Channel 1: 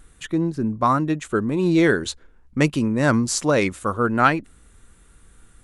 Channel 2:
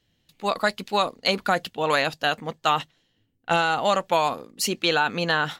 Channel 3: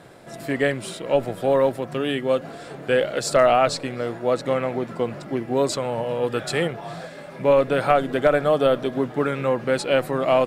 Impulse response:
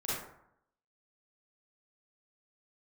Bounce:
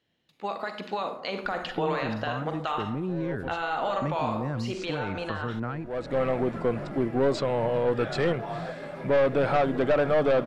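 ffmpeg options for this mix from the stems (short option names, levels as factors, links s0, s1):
-filter_complex "[0:a]acrossover=split=160[s0][s1];[s1]acompressor=threshold=0.0398:ratio=6[s2];[s0][s2]amix=inputs=2:normalize=0,adelay=1450,volume=1.06[s3];[1:a]highpass=f=340:p=1,alimiter=limit=0.112:level=0:latency=1:release=97,dynaudnorm=f=100:g=21:m=2,volume=0.891,asplit=3[s4][s5][s6];[s5]volume=0.237[s7];[2:a]aeval=exprs='(tanh(10*val(0)+0.3)-tanh(0.3))/10':c=same,adelay=1650,volume=1.26[s8];[s6]apad=whole_len=534182[s9];[s8][s9]sidechaincompress=threshold=0.00158:ratio=6:attack=16:release=421[s10];[s3][s4]amix=inputs=2:normalize=0,highshelf=f=7100:g=-11.5,acompressor=threshold=0.0398:ratio=4,volume=1[s11];[3:a]atrim=start_sample=2205[s12];[s7][s12]afir=irnorm=-1:irlink=0[s13];[s10][s11][s13]amix=inputs=3:normalize=0,acrossover=split=6700[s14][s15];[s15]acompressor=threshold=0.00112:ratio=4:attack=1:release=60[s16];[s14][s16]amix=inputs=2:normalize=0,highshelf=f=4000:g=-10.5"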